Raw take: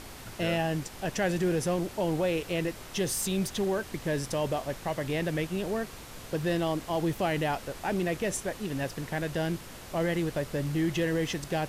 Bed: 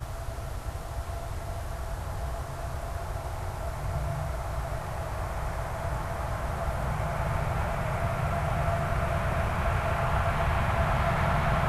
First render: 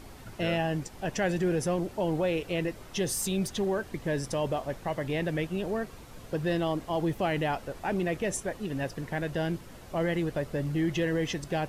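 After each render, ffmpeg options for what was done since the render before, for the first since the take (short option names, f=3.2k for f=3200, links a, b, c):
-af "afftdn=nr=8:nf=-45"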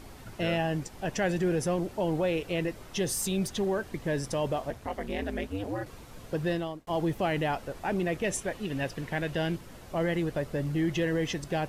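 -filter_complex "[0:a]asettb=1/sr,asplit=3[a][b][c];[a]atrim=end=4.704[d];[b]atrim=start=4.7:end=5.86,asetpts=PTS-STARTPTS,afade=t=in:d=0.004:c=qsin,afade=t=out:st=1.156:d=0.004:c=qsin,aeval=exprs='val(0)*sin(2*PI*100*n/s)':c=same[e];[c]atrim=start=5.856[f];[d][e]acrossfade=d=0.004:c1=hsin:c2=qsin[g];[g][f]acrossfade=d=0.004:c1=qsin:c2=hsin,asettb=1/sr,asplit=3[h][i][j];[h]atrim=end=8.244[k];[i]atrim=start=8.24:end=9.56,asetpts=PTS-STARTPTS,afade=t=in:d=0.004:c=qsin,afade=t=out:st=1.316:d=0.004:c=qsin,equalizer=f=2.8k:w=1.2:g=5[l];[j]atrim=start=9.556[m];[k][l]acrossfade=d=0.004:c1=hsin:c2=qsin[n];[n][m]acrossfade=d=0.004:c1=qsin:c2=hsin,asplit=2[o][p];[o]atrim=end=6.87,asetpts=PTS-STARTPTS,afade=t=out:st=6.47:d=0.4[q];[p]atrim=start=6.87,asetpts=PTS-STARTPTS,afade=t=in:d=0.004:c=hsin[r];[q][r]concat=n=2:v=0:a=1"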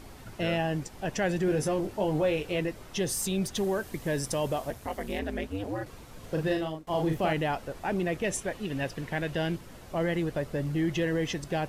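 -filter_complex "[0:a]asettb=1/sr,asplit=3[a][b][c];[a]atrim=end=1.464[d];[b]atrim=start=1.46:end=2.6,asetpts=PTS-STARTPTS,afade=t=in:d=0.004:c=qsin,afade=t=out:st=1.136:d=0.004:c=qsin,asplit=2[e][f];[f]adelay=20,volume=-6dB[g];[e][g]amix=inputs=2:normalize=0,atrim=end_sample=50274[h];[c]atrim=start=2.596[i];[d][h]acrossfade=d=0.004:c1=hsin:c2=qsin[j];[j][i]acrossfade=d=0.004:c1=qsin:c2=hsin,asettb=1/sr,asplit=3[k][l][m];[k]atrim=end=3.554[n];[l]atrim=start=3.55:end=5.19,asetpts=PTS-STARTPTS,afade=t=in:d=0.004:c=qsin,afade=t=out:st=1.636:d=0.004:c=qsin,highshelf=f=7.4k:g=11.5[o];[m]atrim=start=5.186[p];[n][o]acrossfade=d=0.004:c1=hsin:c2=qsin[q];[q][p]acrossfade=d=0.004:c1=qsin:c2=hsin,asettb=1/sr,asplit=3[r][s][t];[r]atrim=end=6.194[u];[s]atrim=start=6.19:end=7.33,asetpts=PTS-STARTPTS,afade=t=in:d=0.004:c=qsin,afade=t=out:st=1.136:d=0.004:c=qsin,asplit=2[v][w];[w]adelay=38,volume=-4dB[x];[v][x]amix=inputs=2:normalize=0,atrim=end_sample=50274[y];[t]atrim=start=7.326[z];[u][y]acrossfade=d=0.004:c1=hsin:c2=qsin[aa];[aa][z]acrossfade=d=0.004:c1=qsin:c2=hsin"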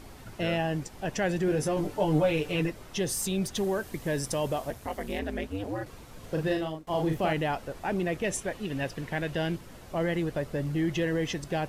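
-filter_complex "[0:a]asettb=1/sr,asplit=3[a][b][c];[a]atrim=end=1.764[d];[b]atrim=start=1.76:end=2.7,asetpts=PTS-STARTPTS,afade=t=in:d=0.004:c=qsin,afade=t=out:st=0.936:d=0.004:c=qsin,aecho=1:1:6.8:0.85,atrim=end_sample=41454[e];[c]atrim=start=2.696[f];[d][e]acrossfade=d=0.004:c1=hsin:c2=qsin[g];[g][f]acrossfade=d=0.004:c1=qsin:c2=hsin"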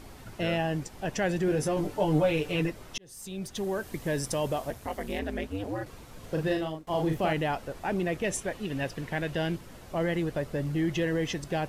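-filter_complex "[0:a]asplit=2[a][b];[a]atrim=end=2.98,asetpts=PTS-STARTPTS,afade=t=out:st=2.976:d=0.004:c=hsin[c];[b]atrim=start=2.98,asetpts=PTS-STARTPTS,afade=t=in:d=0.95[d];[c][d]concat=n=2:v=0:a=1"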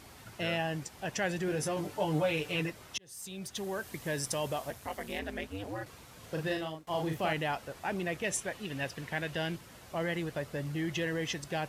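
-af "highpass=88,equalizer=f=290:w=0.42:g=-7"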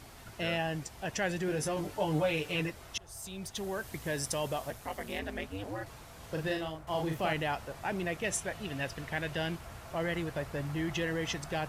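-filter_complex "[1:a]volume=-21dB[a];[0:a][a]amix=inputs=2:normalize=0"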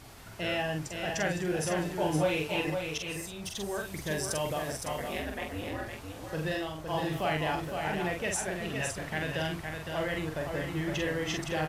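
-filter_complex "[0:a]asplit=2[a][b];[b]adelay=45,volume=-4dB[c];[a][c]amix=inputs=2:normalize=0,asplit=2[d][e];[e]aecho=0:1:512:0.531[f];[d][f]amix=inputs=2:normalize=0"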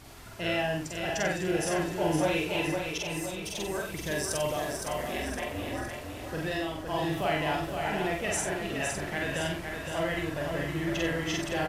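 -filter_complex "[0:a]asplit=2[a][b];[b]adelay=48,volume=-3.5dB[c];[a][c]amix=inputs=2:normalize=0,aecho=1:1:1026:0.266"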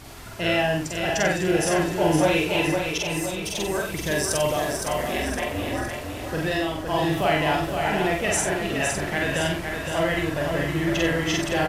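-af "volume=7dB"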